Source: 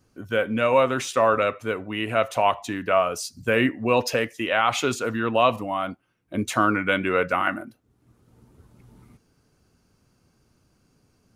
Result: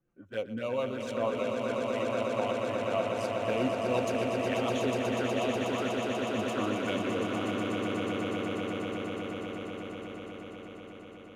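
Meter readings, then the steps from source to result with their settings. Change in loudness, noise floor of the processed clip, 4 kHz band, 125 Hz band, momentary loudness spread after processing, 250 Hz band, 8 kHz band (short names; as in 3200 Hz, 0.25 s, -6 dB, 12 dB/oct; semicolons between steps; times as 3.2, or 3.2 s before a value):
-8.5 dB, -48 dBFS, -7.0 dB, -4.5 dB, 11 LU, -3.5 dB, -10.5 dB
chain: Wiener smoothing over 9 samples; low shelf 250 Hz -2.5 dB; envelope flanger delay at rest 5.9 ms, full sweep at -20 dBFS; rotary speaker horn 7 Hz, later 1.1 Hz, at 4.46; on a send: swelling echo 0.122 s, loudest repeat 8, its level -6 dB; on the sum: gain -7.5 dB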